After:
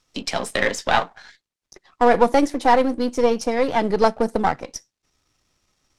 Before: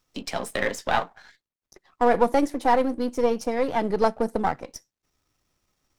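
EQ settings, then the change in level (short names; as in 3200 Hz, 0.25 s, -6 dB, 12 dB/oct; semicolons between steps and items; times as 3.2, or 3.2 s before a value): air absorption 55 m; high shelf 3100 Hz +8.5 dB; +4.0 dB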